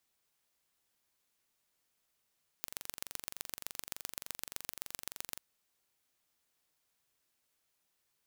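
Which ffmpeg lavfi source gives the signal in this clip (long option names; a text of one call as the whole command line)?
ffmpeg -f lavfi -i "aevalsrc='0.316*eq(mod(n,1885),0)*(0.5+0.5*eq(mod(n,5655),0))':duration=2.74:sample_rate=44100" out.wav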